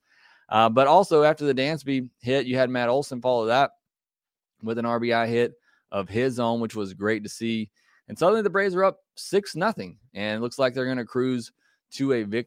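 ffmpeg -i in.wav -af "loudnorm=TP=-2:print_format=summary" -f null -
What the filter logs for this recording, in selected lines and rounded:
Input Integrated:    -24.5 LUFS
Input True Peak:      -4.7 dBTP
Input LRA:             4.1 LU
Input Threshold:     -35.1 LUFS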